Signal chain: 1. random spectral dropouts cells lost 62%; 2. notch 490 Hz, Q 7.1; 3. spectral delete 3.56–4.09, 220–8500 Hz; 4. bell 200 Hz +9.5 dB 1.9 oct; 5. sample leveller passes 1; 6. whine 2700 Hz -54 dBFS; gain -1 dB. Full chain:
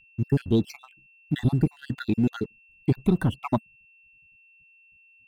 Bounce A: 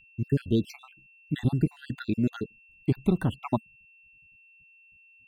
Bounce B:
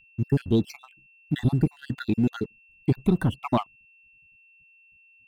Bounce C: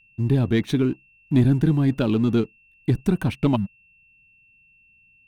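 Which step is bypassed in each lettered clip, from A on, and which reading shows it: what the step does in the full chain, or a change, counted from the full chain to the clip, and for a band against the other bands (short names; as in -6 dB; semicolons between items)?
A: 5, crest factor change +3.0 dB; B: 3, 1 kHz band +2.5 dB; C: 1, 1 kHz band -3.5 dB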